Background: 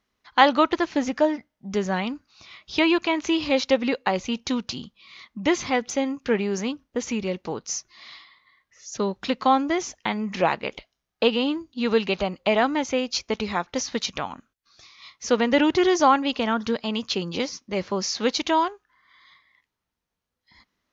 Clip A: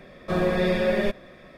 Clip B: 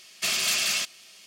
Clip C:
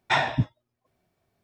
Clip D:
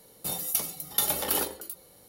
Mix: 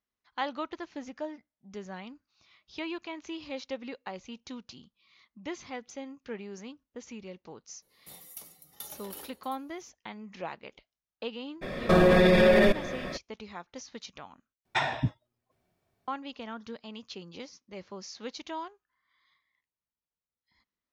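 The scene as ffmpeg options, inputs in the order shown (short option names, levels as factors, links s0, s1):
-filter_complex "[0:a]volume=0.15[s0];[1:a]alimiter=level_in=12.6:limit=0.891:release=50:level=0:latency=1[s1];[3:a]alimiter=limit=0.188:level=0:latency=1:release=265[s2];[s0]asplit=2[s3][s4];[s3]atrim=end=14.654[s5];[s2]atrim=end=1.43,asetpts=PTS-STARTPTS,volume=0.75[s6];[s4]atrim=start=16.076[s7];[4:a]atrim=end=2.08,asetpts=PTS-STARTPTS,volume=0.133,afade=t=in:d=0.004:c=hsin,afade=t=out:st=2.076:d=0.004:c=hsin,adelay=7820[s8];[s1]atrim=end=1.57,asetpts=PTS-STARTPTS,volume=0.282,afade=t=in:d=0.02,afade=t=out:st=1.55:d=0.02,adelay=11610[s9];[s5][s6]acrossfade=d=0.004:c1=hsin:c2=hsin[s10];[s10][s7]acrossfade=d=0.004:c1=hsin:c2=hsin[s11];[s11][s8][s9]amix=inputs=3:normalize=0"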